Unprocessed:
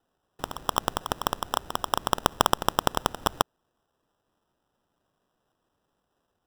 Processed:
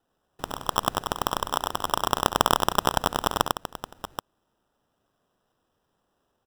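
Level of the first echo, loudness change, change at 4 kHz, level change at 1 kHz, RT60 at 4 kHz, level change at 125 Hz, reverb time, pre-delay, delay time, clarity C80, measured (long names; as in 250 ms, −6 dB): −12.5 dB, +2.0 dB, +2.0 dB, +2.0 dB, no reverb audible, +2.0 dB, no reverb audible, no reverb audible, 68 ms, no reverb audible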